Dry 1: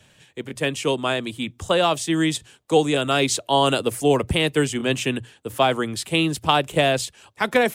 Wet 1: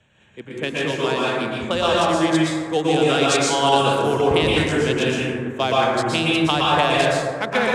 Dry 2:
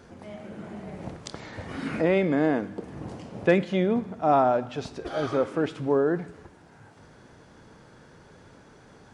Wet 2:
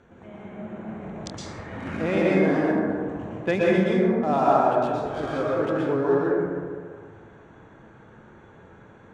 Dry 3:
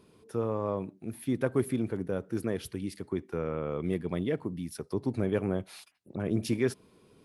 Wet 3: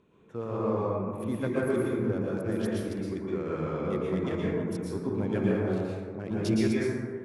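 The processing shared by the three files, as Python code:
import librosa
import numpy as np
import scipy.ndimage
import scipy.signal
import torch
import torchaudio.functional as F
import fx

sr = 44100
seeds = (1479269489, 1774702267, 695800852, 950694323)

y = fx.wiener(x, sr, points=9)
y = scipy.signal.sosfilt(scipy.signal.butter(2, 7600.0, 'lowpass', fs=sr, output='sos'), y)
y = fx.high_shelf(y, sr, hz=3000.0, db=8.5)
y = fx.rev_plate(y, sr, seeds[0], rt60_s=1.9, hf_ratio=0.3, predelay_ms=105, drr_db=-6.0)
y = y * librosa.db_to_amplitude(-5.0)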